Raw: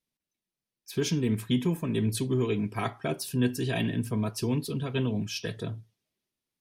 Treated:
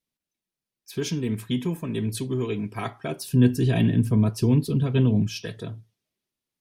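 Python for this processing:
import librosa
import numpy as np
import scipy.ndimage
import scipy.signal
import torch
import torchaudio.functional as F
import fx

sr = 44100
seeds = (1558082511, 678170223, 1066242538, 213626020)

y = fx.low_shelf(x, sr, hz=360.0, db=11.5, at=(3.32, 5.43))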